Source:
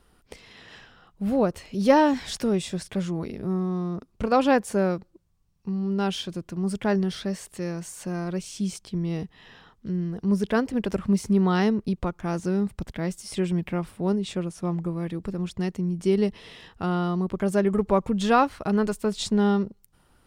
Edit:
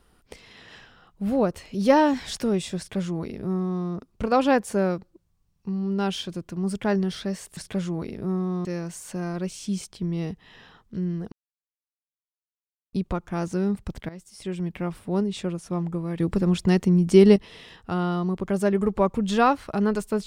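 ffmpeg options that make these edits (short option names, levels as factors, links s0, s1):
-filter_complex "[0:a]asplit=8[s0][s1][s2][s3][s4][s5][s6][s7];[s0]atrim=end=7.572[s8];[s1]atrim=start=2.778:end=3.862[s9];[s2]atrim=start=7.568:end=10.24,asetpts=PTS-STARTPTS,afade=t=out:st=2.668:d=0.004:c=hsin[s10];[s3]atrim=start=10.24:end=11.85,asetpts=PTS-STARTPTS,volume=0[s11];[s4]atrim=start=11.85:end=13.01,asetpts=PTS-STARTPTS,afade=t=in:d=0.004:c=hsin,afade=t=out:st=1.156:d=0.004:c=hsin:silence=0.158489[s12];[s5]atrim=start=13.01:end=15.122,asetpts=PTS-STARTPTS,afade=t=in:d=0.91:silence=0.158489[s13];[s6]atrim=start=15.118:end=16.282,asetpts=PTS-STARTPTS,volume=2.51[s14];[s7]atrim=start=16.278[s15];[s8][s9]acrossfade=d=0.004:c1=hsin:c2=hsin[s16];[s10][s11][s12][s13]concat=n=4:v=0:a=1[s17];[s16][s17]acrossfade=d=0.004:c1=hsin:c2=hsin[s18];[s18][s14]acrossfade=d=0.004:c1=hsin:c2=hsin[s19];[s19][s15]acrossfade=d=0.004:c1=hsin:c2=hsin"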